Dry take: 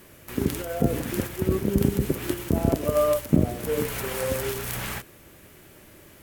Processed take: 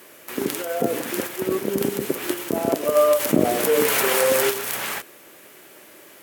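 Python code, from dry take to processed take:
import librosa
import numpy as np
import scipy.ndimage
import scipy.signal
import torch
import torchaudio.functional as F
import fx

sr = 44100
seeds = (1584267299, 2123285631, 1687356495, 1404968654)

y = scipy.signal.sosfilt(scipy.signal.butter(2, 360.0, 'highpass', fs=sr, output='sos'), x)
y = fx.env_flatten(y, sr, amount_pct=50, at=(3.19, 4.49), fade=0.02)
y = y * 10.0 ** (5.5 / 20.0)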